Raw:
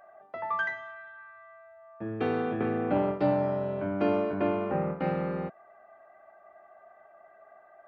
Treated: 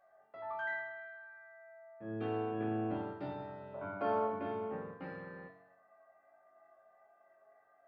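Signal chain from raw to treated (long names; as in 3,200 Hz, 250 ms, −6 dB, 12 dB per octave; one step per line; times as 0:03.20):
0:03.74–0:04.27: flat-topped bell 890 Hz +9.5 dB
resonators tuned to a chord F#2 minor, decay 0.75 s
level +6.5 dB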